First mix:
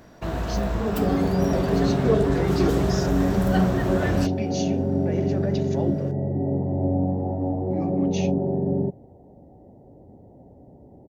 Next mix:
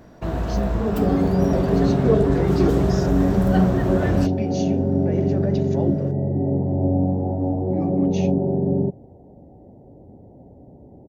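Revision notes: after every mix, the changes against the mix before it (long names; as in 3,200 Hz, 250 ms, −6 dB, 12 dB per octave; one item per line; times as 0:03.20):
master: add tilt shelving filter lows +3.5 dB, about 1,100 Hz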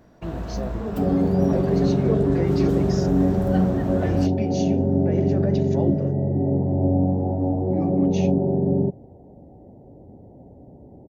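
first sound −6.5 dB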